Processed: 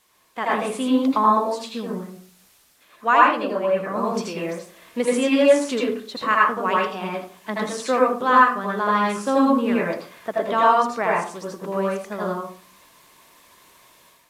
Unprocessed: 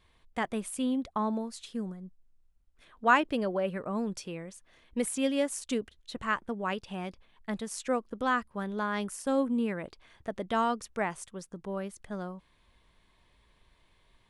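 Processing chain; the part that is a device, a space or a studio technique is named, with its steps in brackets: filmed off a television (BPF 250–6300 Hz; bell 1100 Hz +5.5 dB 0.33 oct; reverb RT60 0.45 s, pre-delay 76 ms, DRR -4.5 dB; white noise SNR 35 dB; AGC gain up to 9 dB; gain -1 dB; AAC 64 kbps 32000 Hz)

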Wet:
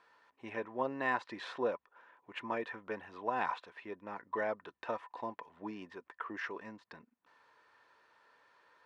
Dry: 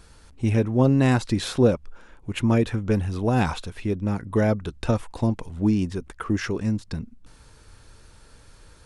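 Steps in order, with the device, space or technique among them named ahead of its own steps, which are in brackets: tin-can telephone (BPF 610–2400 Hz; small resonant body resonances 1000/1800 Hz, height 11 dB, ringing for 45 ms); gain -8 dB

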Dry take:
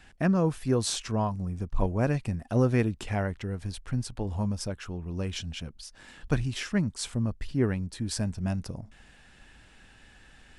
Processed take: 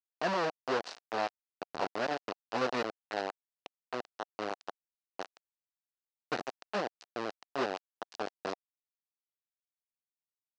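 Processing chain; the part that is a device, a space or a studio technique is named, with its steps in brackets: hand-held game console (bit-crush 4-bit; speaker cabinet 430–4700 Hz, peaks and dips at 730 Hz +4 dB, 2200 Hz -6 dB, 3400 Hz -7 dB); gain -4 dB

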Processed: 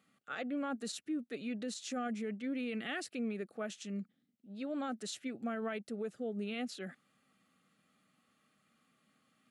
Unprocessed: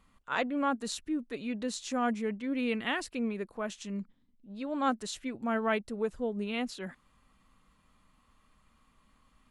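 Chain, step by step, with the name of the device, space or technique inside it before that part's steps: PA system with an anti-feedback notch (HPF 140 Hz 24 dB/oct; Butterworth band-stop 980 Hz, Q 3; limiter -27.5 dBFS, peak gain reduction 9.5 dB); gain -3 dB

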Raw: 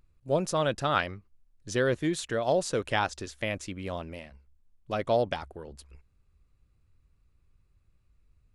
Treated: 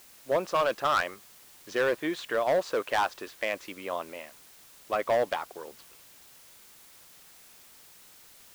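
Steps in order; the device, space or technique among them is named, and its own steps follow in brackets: drive-through speaker (BPF 430–3100 Hz; bell 1100 Hz +5 dB 0.41 oct; hard clip -23 dBFS, distortion -10 dB; white noise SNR 22 dB); gain +3.5 dB

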